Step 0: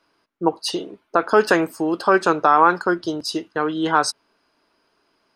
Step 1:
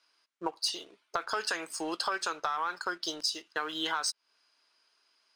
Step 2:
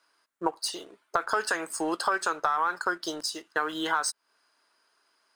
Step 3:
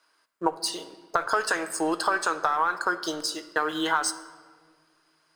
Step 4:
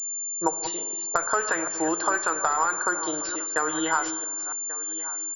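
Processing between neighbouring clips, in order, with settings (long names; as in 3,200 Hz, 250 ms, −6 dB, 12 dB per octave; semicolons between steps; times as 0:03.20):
meter weighting curve ITU-R 468; leveller curve on the samples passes 1; downward compressor 12 to 1, threshold −20 dBFS, peak gain reduction 13.5 dB; level −8.5 dB
flat-topped bell 3,700 Hz −8 dB; level +6 dB
rectangular room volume 2,000 cubic metres, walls mixed, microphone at 0.55 metres; level +2 dB
delay that plays each chunk backwards 283 ms, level −12 dB; single-tap delay 1,137 ms −17 dB; switching amplifier with a slow clock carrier 7,200 Hz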